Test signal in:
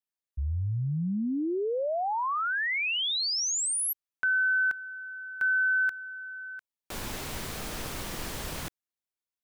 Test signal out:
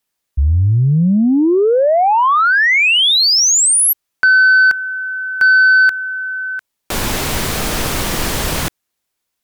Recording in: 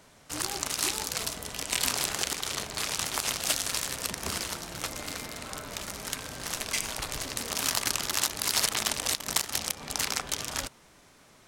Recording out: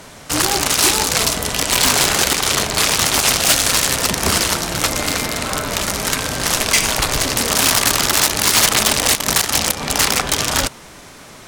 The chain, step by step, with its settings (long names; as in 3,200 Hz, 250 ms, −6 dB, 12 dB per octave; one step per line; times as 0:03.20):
sine wavefolder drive 14 dB, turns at −6.5 dBFS